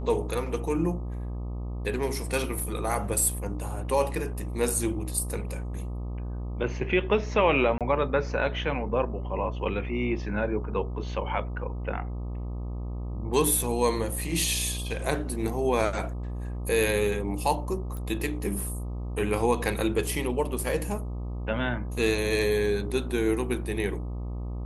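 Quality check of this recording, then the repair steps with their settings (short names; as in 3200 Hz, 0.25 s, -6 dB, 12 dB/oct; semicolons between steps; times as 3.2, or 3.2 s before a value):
buzz 60 Hz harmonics 21 -33 dBFS
7.78–7.81 gap 27 ms
17.97 pop -25 dBFS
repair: de-click; de-hum 60 Hz, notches 21; interpolate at 7.78, 27 ms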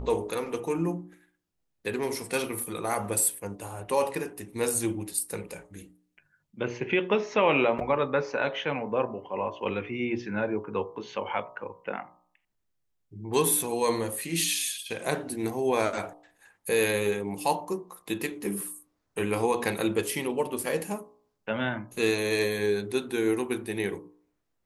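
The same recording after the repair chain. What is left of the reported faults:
17.97 pop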